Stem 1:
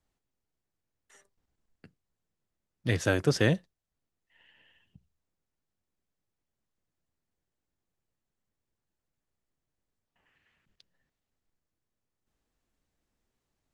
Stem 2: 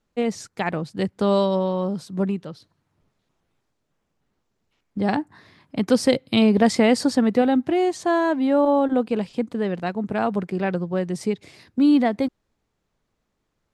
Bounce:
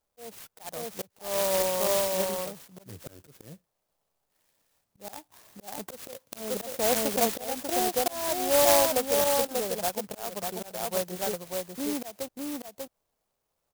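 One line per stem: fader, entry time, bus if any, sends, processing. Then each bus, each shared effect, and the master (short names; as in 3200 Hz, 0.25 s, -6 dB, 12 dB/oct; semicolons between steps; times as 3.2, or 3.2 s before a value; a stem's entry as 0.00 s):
-9.0 dB, 0.00 s, no send, no echo send, dry
-3.0 dB, 0.00 s, no send, echo send -3.5 dB, resonant low shelf 420 Hz -11.5 dB, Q 1.5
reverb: off
echo: echo 0.592 s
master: auto swell 0.355 s; clock jitter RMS 0.15 ms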